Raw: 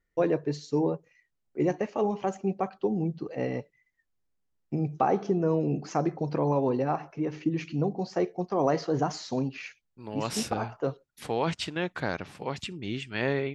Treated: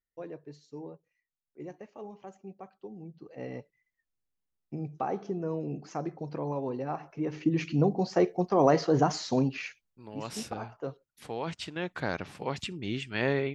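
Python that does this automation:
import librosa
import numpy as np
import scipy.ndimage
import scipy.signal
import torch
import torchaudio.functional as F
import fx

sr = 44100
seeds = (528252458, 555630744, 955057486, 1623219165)

y = fx.gain(x, sr, db=fx.line((3.01, -16.5), (3.53, -7.5), (6.79, -7.5), (7.63, 3.0), (9.6, 3.0), (10.12, -7.0), (11.49, -7.0), (12.21, 0.0)))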